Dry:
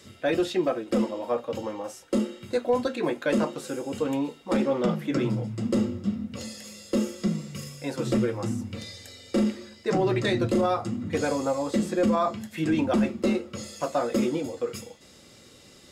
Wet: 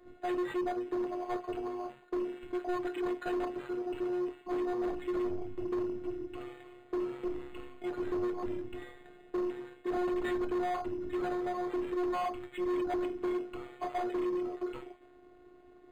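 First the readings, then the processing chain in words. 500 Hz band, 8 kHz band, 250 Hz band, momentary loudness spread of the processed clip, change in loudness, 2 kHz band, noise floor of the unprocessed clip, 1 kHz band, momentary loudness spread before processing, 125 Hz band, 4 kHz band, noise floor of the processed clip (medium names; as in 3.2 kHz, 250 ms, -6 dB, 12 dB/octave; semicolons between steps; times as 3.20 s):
-7.0 dB, under -20 dB, -9.0 dB, 9 LU, -8.0 dB, -9.0 dB, -52 dBFS, -5.5 dB, 10 LU, -20.5 dB, -14.5 dB, -58 dBFS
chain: high-pass 110 Hz; level-controlled noise filter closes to 1 kHz, open at -25 dBFS; robot voice 359 Hz; saturation -30.5 dBFS, distortion -7 dB; decimation joined by straight lines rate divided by 8×; trim +1.5 dB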